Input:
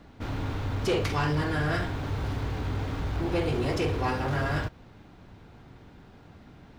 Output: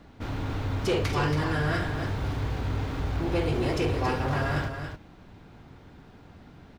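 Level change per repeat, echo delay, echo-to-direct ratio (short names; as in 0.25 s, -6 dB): no steady repeat, 0.278 s, -7.5 dB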